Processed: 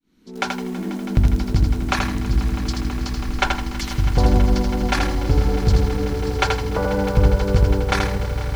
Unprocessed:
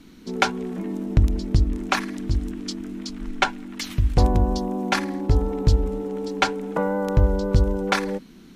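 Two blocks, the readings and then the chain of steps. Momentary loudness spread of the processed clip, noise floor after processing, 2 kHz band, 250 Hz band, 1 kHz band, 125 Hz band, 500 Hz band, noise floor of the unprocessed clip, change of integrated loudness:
8 LU, -31 dBFS, +2.0 dB, +2.0 dB, +1.5 dB, +4.0 dB, +2.0 dB, -46 dBFS, +3.0 dB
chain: fade-in on the opening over 0.69 s; echo with a slow build-up 163 ms, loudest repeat 5, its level -15 dB; bit-crushed delay 81 ms, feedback 35%, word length 7-bit, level -4 dB

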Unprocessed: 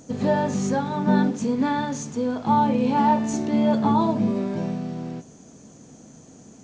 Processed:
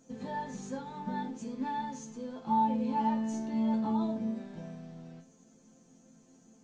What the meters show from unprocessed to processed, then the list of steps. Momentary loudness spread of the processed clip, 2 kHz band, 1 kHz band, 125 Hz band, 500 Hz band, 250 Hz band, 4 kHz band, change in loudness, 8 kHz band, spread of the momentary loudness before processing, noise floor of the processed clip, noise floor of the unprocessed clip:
15 LU, -14.5 dB, -9.5 dB, -15.5 dB, -16.0 dB, -11.0 dB, -14.0 dB, -11.0 dB, no reading, 9 LU, -62 dBFS, -48 dBFS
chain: chord resonator F3 major, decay 0.24 s; trim +1 dB

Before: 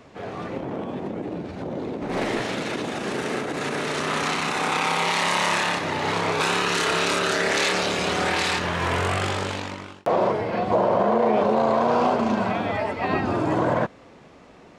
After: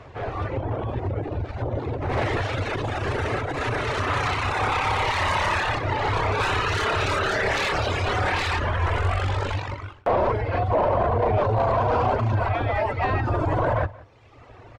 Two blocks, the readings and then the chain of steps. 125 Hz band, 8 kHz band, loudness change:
+8.0 dB, -9.0 dB, -0.5 dB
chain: octave divider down 1 oct, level +2 dB; reverb removal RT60 1 s; resonant low shelf 130 Hz +9.5 dB, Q 3; in parallel at -2 dB: compressor with a negative ratio -21 dBFS; on the sum: overdrive pedal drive 16 dB, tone 1.3 kHz, clips at -3 dBFS; on a send: delay 177 ms -21.5 dB; on the sum: trim -7.5 dB

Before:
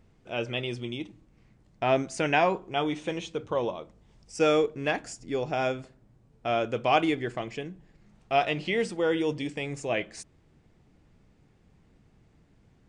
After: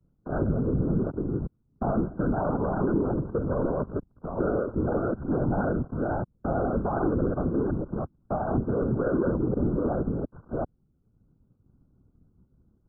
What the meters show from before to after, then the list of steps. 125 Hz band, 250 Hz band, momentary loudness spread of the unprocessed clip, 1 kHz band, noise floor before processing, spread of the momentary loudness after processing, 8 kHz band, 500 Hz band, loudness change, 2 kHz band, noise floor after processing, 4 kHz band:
+9.5 dB, +6.0 dB, 13 LU, -3.5 dB, -63 dBFS, 8 LU, under -35 dB, 0.0 dB, +0.5 dB, -10.0 dB, -69 dBFS, under -40 dB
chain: chunks repeated in reverse 367 ms, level -5.5 dB; expander -55 dBFS; waveshaping leveller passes 5; in parallel at -1 dB: peak limiter -21 dBFS, peak gain reduction 10.5 dB; on the sum: brick-wall FIR low-pass 1.5 kHz; peaking EQ 810 Hz -14.5 dB 2.9 oct; whisper effect; three bands compressed up and down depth 40%; trim -4 dB

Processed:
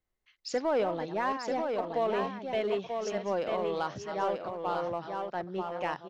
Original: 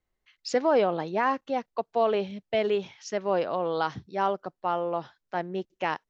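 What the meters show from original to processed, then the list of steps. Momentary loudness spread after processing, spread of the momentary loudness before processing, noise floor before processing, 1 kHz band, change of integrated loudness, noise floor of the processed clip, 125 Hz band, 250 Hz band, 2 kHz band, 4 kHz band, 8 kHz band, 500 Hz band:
6 LU, 9 LU, -83 dBFS, -4.0 dB, -4.0 dB, -81 dBFS, -3.5 dB, -4.0 dB, -4.5 dB, -4.0 dB, no reading, -4.0 dB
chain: chunks repeated in reverse 265 ms, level -10.5 dB; in parallel at -6.5 dB: overload inside the chain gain 26 dB; on the sum: delay 939 ms -5 dB; trim -7.5 dB

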